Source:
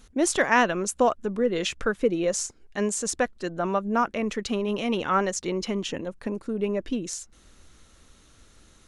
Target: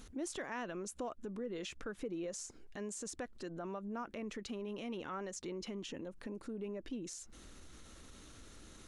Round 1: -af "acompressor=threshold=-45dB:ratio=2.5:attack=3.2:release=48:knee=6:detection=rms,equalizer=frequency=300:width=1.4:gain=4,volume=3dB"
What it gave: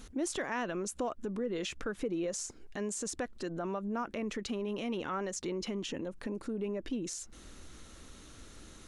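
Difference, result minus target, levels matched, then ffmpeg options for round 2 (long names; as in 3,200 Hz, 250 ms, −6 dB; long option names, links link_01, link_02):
downward compressor: peak gain reduction −6.5 dB
-af "acompressor=threshold=-56dB:ratio=2.5:attack=3.2:release=48:knee=6:detection=rms,equalizer=frequency=300:width=1.4:gain=4,volume=3dB"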